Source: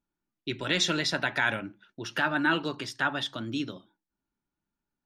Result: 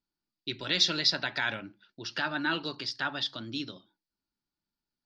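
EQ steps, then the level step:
low-pass with resonance 4,700 Hz, resonance Q 5.6
−5.5 dB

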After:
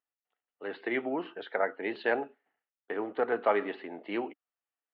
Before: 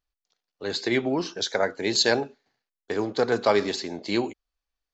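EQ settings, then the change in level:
high-frequency loss of the air 410 metres
loudspeaker in its box 260–3,300 Hz, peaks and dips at 290 Hz +4 dB, 470 Hz +3 dB, 700 Hz +6 dB, 1,300 Hz +8 dB, 1,900 Hz +8 dB, 2,900 Hz +10 dB
parametric band 880 Hz +4.5 dB 0.2 octaves
−8.0 dB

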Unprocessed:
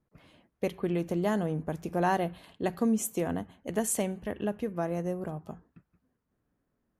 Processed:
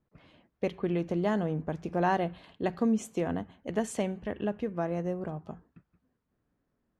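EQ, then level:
low-pass filter 4,800 Hz 12 dB per octave
0.0 dB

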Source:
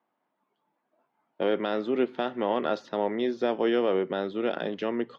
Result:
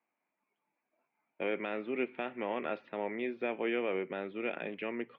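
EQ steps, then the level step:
transistor ladder low-pass 2,500 Hz, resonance 80%
low-shelf EQ 67 Hz −6 dB
parametric band 1,800 Hz −2.5 dB 2.6 octaves
+4.0 dB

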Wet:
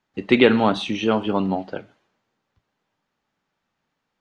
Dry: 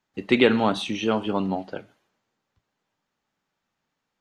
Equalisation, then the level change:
high-frequency loss of the air 68 metres
+3.5 dB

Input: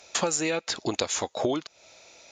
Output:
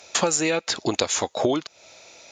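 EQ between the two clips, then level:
high-pass filter 55 Hz
+4.5 dB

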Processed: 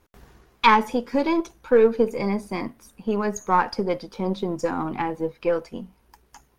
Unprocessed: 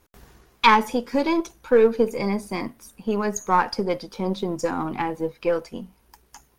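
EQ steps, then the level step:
high-shelf EQ 4,300 Hz −6.5 dB
0.0 dB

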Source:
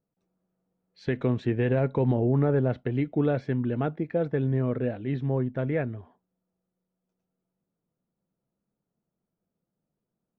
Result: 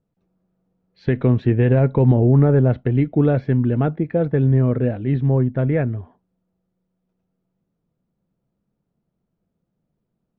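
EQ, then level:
high-frequency loss of the air 180 metres
low-shelf EQ 150 Hz +9 dB
+6.0 dB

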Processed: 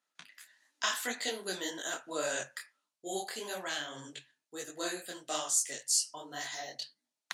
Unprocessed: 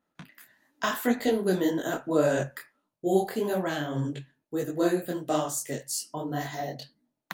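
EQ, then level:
meter weighting curve ITU-R 468
−7.0 dB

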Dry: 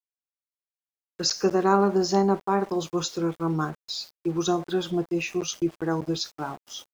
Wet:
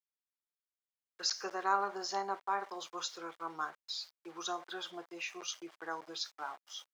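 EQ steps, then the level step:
high-pass filter 1,000 Hz 12 dB per octave
low-pass filter 3,500 Hz 6 dB per octave
notch filter 2,600 Hz, Q 16
−3.5 dB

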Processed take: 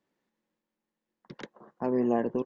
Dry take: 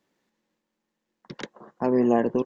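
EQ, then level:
high-shelf EQ 3,800 Hz −7 dB
−5.5 dB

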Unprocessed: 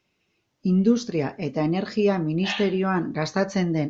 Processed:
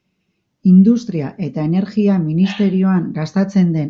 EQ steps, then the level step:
parametric band 190 Hz +10 dB 0.64 octaves
low-shelf EQ 260 Hz +5.5 dB
−1.0 dB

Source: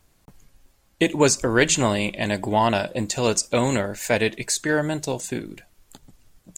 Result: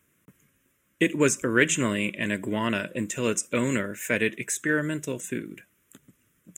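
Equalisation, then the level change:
high-pass filter 160 Hz 12 dB per octave
phaser with its sweep stopped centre 1,900 Hz, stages 4
0.0 dB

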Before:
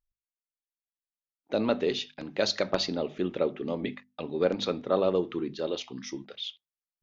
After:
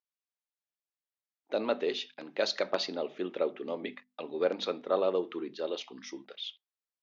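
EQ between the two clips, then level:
high-pass filter 350 Hz 12 dB per octave
high-frequency loss of the air 68 metres
−1.5 dB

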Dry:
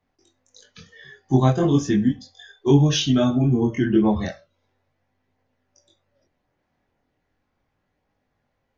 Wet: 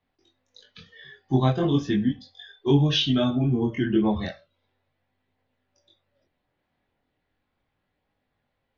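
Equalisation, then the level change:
Chebyshev low-pass filter 3,800 Hz, order 3
high-shelf EQ 2,800 Hz +9.5 dB
−4.0 dB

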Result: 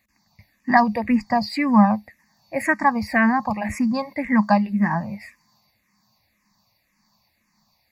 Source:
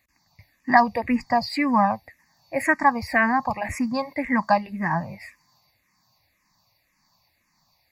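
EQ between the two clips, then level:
parametric band 210 Hz +13 dB 0.23 octaves
0.0 dB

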